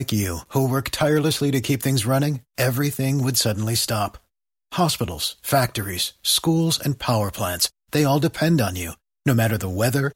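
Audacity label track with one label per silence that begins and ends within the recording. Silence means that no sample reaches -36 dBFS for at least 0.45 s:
4.160000	4.720000	silence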